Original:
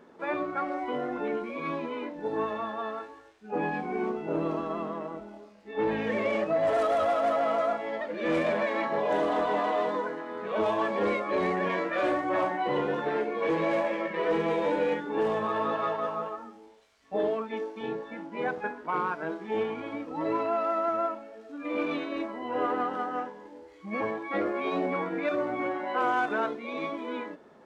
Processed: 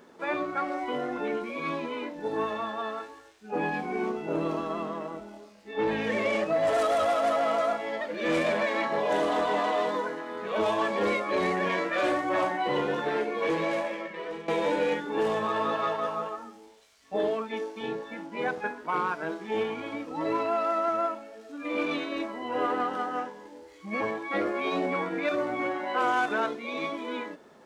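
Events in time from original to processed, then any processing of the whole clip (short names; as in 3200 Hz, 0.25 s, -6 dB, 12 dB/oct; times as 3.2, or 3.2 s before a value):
13.4–14.48 fade out, to -15.5 dB
whole clip: high shelf 3400 Hz +11 dB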